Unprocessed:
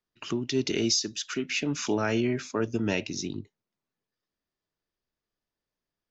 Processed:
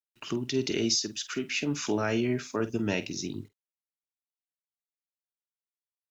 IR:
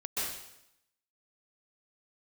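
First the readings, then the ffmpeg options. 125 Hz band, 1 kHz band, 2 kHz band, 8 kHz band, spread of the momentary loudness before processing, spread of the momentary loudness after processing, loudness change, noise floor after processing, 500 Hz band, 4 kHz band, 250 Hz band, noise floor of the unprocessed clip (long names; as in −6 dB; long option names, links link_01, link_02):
−1.0 dB, −1.5 dB, −1.5 dB, can't be measured, 9 LU, 9 LU, −1.5 dB, below −85 dBFS, −1.0 dB, −1.5 dB, −1.0 dB, below −85 dBFS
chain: -filter_complex "[0:a]acrusher=bits=10:mix=0:aa=0.000001,asplit=2[link_01][link_02];[link_02]adelay=48,volume=-13.5dB[link_03];[link_01][link_03]amix=inputs=2:normalize=0,volume=-1.5dB"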